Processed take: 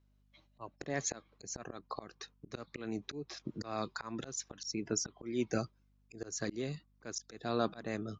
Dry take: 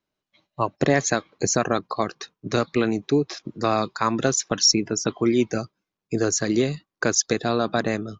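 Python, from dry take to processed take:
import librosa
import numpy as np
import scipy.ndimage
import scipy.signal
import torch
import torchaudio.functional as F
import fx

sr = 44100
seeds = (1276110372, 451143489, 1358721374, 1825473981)

y = fx.auto_swell(x, sr, attack_ms=555.0)
y = fx.add_hum(y, sr, base_hz=50, snr_db=30)
y = F.gain(torch.from_numpy(y), -3.5).numpy()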